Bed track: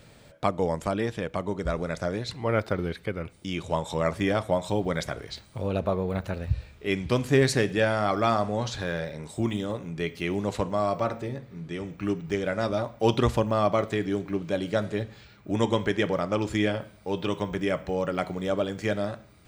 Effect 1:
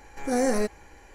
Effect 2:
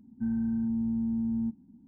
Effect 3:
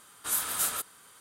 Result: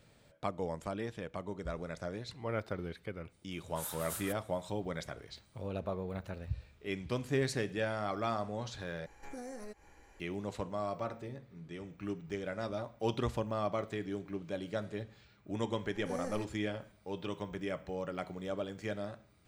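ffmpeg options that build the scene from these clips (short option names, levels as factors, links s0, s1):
-filter_complex "[1:a]asplit=2[s0][s1];[0:a]volume=0.282[s2];[s0]acompressor=threshold=0.0224:ratio=8:attack=21:release=171:knee=1:detection=rms[s3];[s2]asplit=2[s4][s5];[s4]atrim=end=9.064[s6];[s3]atrim=end=1.14,asetpts=PTS-STARTPTS,volume=0.335[s7];[s5]atrim=start=10.196[s8];[3:a]atrim=end=1.2,asetpts=PTS-STARTPTS,volume=0.211,afade=t=in:d=0.004:c=hsin,afade=t=out:st=1.196:d=0.004:c=hsin,adelay=3510[s9];[s1]atrim=end=1.14,asetpts=PTS-STARTPTS,volume=0.133,afade=t=in:d=0.004:c=hsin,afade=t=out:st=1.136:d=0.004:c=hsin,adelay=15780[s10];[s6][s7]acrossfade=d=0.004:c1=hsin:c2=hsin[s11];[s11][s8]acrossfade=d=0.004:c1=hsin:c2=hsin[s12];[s12][s9][s10]amix=inputs=3:normalize=0"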